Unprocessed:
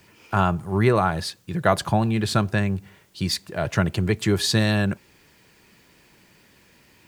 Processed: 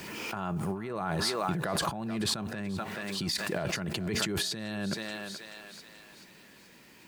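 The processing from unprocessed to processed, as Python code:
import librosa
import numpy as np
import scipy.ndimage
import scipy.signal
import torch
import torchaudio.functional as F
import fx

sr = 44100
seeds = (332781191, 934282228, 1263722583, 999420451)

y = fx.echo_thinned(x, sr, ms=431, feedback_pct=46, hz=560.0, wet_db=-13.0)
y = fx.over_compress(y, sr, threshold_db=-28.0, ratio=-1.0)
y = fx.low_shelf_res(y, sr, hz=140.0, db=-6.5, q=1.5)
y = fx.pre_swell(y, sr, db_per_s=25.0)
y = F.gain(torch.from_numpy(y), -6.0).numpy()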